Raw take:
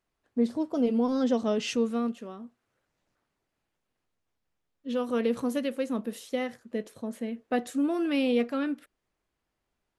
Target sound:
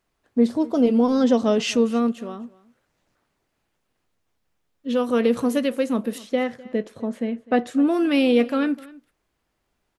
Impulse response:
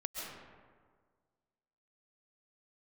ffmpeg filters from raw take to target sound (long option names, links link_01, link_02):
-filter_complex "[0:a]asettb=1/sr,asplit=3[link_01][link_02][link_03];[link_01]atrim=end=6.184[link_04];[link_02]atrim=start=6.18:end=7.87,asetpts=PTS-STARTPTS,afade=type=in:duration=0.004:curve=qsin,afade=type=out:start_time=1.686:duration=0.004:curve=qsin,aemphasis=mode=reproduction:type=50fm[link_05];[link_03]atrim=start=7.866[link_06];[link_04][link_05]acrossfade=duration=0.004:curve1=hsin:curve2=qsin[link_07];[link_07][link_06]acrossfade=duration=0.004:curve1=qsin:curve2=hsin,asplit=2[link_08][link_09];[link_09]aecho=0:1:253:0.0841[link_10];[link_08][link_10]amix=inputs=2:normalize=0,volume=7.5dB"